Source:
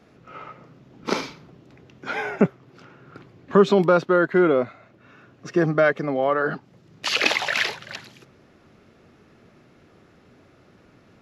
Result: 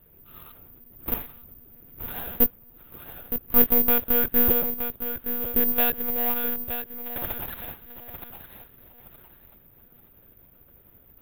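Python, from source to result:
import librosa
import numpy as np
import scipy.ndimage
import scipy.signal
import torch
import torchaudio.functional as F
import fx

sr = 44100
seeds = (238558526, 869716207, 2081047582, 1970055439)

y = fx.dead_time(x, sr, dead_ms=0.23)
y = fx.low_shelf(y, sr, hz=120.0, db=10.0)
y = fx.echo_feedback(y, sr, ms=915, feedback_pct=30, wet_db=-9)
y = fx.lpc_monotone(y, sr, seeds[0], pitch_hz=240.0, order=8)
y = (np.kron(y[::3], np.eye(3)[0]) * 3)[:len(y)]
y = y * 10.0 ** (-8.0 / 20.0)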